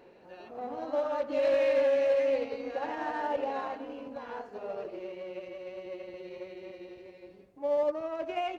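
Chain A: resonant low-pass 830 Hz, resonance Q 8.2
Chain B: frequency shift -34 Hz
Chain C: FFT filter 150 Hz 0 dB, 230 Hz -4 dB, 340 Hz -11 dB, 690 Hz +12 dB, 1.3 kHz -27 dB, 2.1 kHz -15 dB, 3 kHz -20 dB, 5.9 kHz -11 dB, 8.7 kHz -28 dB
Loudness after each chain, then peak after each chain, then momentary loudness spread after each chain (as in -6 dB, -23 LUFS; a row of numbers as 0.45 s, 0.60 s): -24.0 LUFS, -32.0 LUFS, -26.0 LUFS; -10.5 dBFS, -17.5 dBFS, -13.5 dBFS; 19 LU, 19 LU, 20 LU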